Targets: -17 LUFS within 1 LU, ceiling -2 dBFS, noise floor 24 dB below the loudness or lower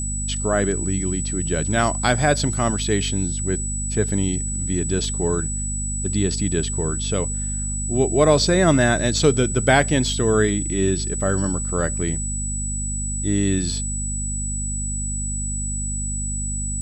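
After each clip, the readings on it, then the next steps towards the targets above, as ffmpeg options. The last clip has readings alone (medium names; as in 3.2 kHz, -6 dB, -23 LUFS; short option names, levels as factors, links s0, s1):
hum 50 Hz; highest harmonic 250 Hz; hum level -25 dBFS; steady tone 7.9 kHz; tone level -27 dBFS; loudness -21.5 LUFS; peak level -2.5 dBFS; loudness target -17.0 LUFS
-> -af "bandreject=f=50:t=h:w=4,bandreject=f=100:t=h:w=4,bandreject=f=150:t=h:w=4,bandreject=f=200:t=h:w=4,bandreject=f=250:t=h:w=4"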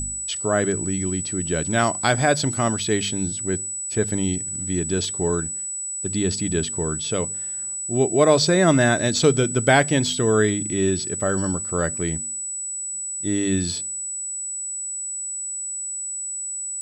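hum not found; steady tone 7.9 kHz; tone level -27 dBFS
-> -af "bandreject=f=7900:w=30"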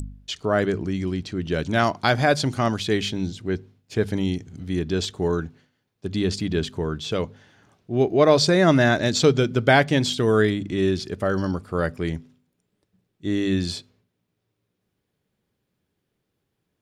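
steady tone not found; loudness -22.5 LUFS; peak level -3.0 dBFS; loudness target -17.0 LUFS
-> -af "volume=1.88,alimiter=limit=0.794:level=0:latency=1"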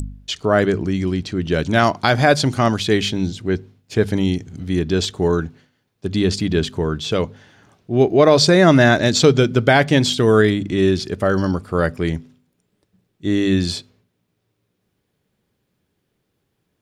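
loudness -17.5 LUFS; peak level -2.0 dBFS; noise floor -72 dBFS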